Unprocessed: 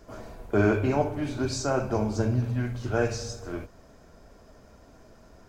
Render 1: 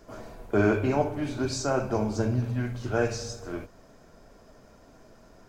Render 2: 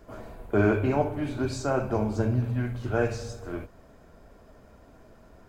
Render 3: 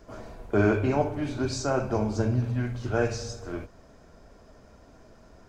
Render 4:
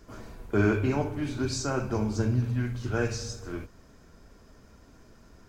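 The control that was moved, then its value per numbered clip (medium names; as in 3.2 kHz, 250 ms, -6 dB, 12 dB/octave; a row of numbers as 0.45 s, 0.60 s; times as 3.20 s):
peaking EQ, frequency: 63 Hz, 5.7 kHz, 15 kHz, 650 Hz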